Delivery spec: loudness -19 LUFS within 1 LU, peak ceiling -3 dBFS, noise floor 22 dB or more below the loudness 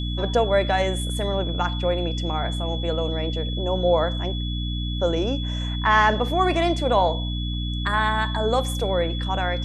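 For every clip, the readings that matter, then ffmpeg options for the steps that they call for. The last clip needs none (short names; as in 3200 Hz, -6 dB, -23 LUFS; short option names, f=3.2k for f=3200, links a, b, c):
hum 60 Hz; harmonics up to 300 Hz; hum level -25 dBFS; steady tone 3400 Hz; tone level -33 dBFS; loudness -23.5 LUFS; peak -6.5 dBFS; loudness target -19.0 LUFS
-> -af "bandreject=f=60:t=h:w=6,bandreject=f=120:t=h:w=6,bandreject=f=180:t=h:w=6,bandreject=f=240:t=h:w=6,bandreject=f=300:t=h:w=6"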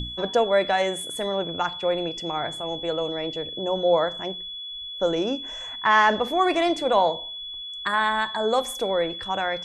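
hum none; steady tone 3400 Hz; tone level -33 dBFS
-> -af "bandreject=f=3.4k:w=30"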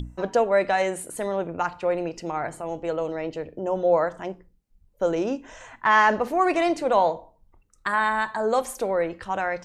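steady tone none; loudness -24.5 LUFS; peak -7.0 dBFS; loudness target -19.0 LUFS
-> -af "volume=5.5dB,alimiter=limit=-3dB:level=0:latency=1"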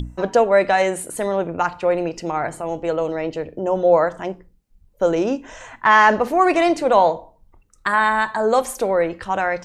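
loudness -19.0 LUFS; peak -3.0 dBFS; noise floor -57 dBFS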